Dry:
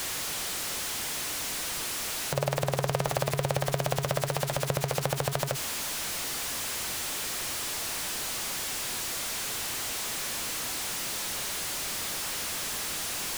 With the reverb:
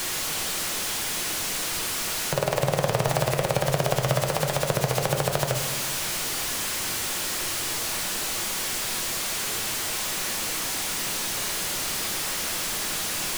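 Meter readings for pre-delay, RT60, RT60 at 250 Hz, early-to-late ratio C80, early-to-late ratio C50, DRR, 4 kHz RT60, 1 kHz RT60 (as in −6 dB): 4 ms, 1.2 s, 1.6 s, 8.5 dB, 7.0 dB, 4.0 dB, 0.85 s, 1.0 s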